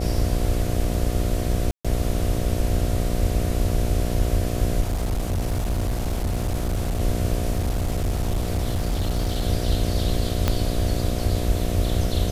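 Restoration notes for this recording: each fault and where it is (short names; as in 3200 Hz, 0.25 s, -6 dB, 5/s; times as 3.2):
buzz 60 Hz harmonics 12 -27 dBFS
1.71–1.85 gap 0.136 s
4.81–7.01 clipped -20 dBFS
7.51–9.43 clipped -19 dBFS
10.48 pop -6 dBFS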